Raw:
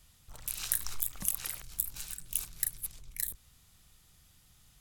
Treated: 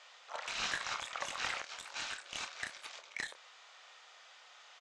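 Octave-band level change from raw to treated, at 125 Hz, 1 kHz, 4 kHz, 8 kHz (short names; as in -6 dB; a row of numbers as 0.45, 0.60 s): -11.0, +13.0, +5.0, -11.5 dB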